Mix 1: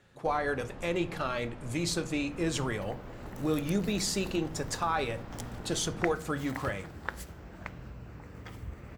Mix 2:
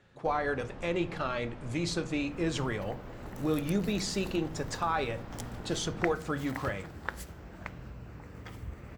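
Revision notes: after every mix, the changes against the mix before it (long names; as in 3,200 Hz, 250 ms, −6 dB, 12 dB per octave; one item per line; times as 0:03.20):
speech: add high-frequency loss of the air 63 metres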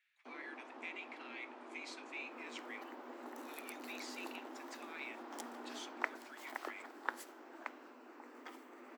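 speech: add four-pole ladder high-pass 2,000 Hz, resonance 65%
master: add Chebyshev high-pass with heavy ripple 240 Hz, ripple 6 dB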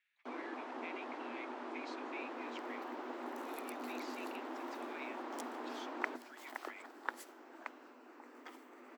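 speech: add low-pass filter 4,900 Hz 12 dB per octave
first sound +9.5 dB
reverb: off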